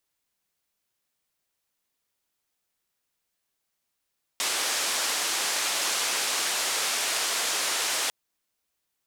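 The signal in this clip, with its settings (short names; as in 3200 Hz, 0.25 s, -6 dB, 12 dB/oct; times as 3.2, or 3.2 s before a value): noise band 440–8300 Hz, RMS -27.5 dBFS 3.70 s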